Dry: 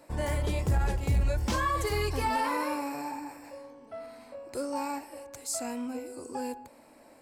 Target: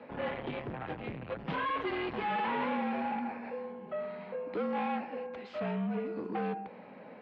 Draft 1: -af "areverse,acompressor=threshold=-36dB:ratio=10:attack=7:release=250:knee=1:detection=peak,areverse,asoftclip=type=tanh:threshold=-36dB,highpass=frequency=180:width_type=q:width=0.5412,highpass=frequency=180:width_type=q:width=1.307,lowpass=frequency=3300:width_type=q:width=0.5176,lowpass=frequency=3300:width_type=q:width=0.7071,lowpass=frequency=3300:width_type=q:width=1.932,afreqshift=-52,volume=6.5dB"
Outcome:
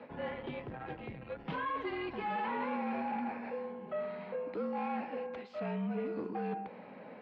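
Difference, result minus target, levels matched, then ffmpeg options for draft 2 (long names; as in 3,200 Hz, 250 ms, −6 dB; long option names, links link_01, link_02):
downward compressor: peak gain reduction +7.5 dB
-af "areverse,acompressor=threshold=-27.5dB:ratio=10:attack=7:release=250:knee=1:detection=peak,areverse,asoftclip=type=tanh:threshold=-36dB,highpass=frequency=180:width_type=q:width=0.5412,highpass=frequency=180:width_type=q:width=1.307,lowpass=frequency=3300:width_type=q:width=0.5176,lowpass=frequency=3300:width_type=q:width=0.7071,lowpass=frequency=3300:width_type=q:width=1.932,afreqshift=-52,volume=6.5dB"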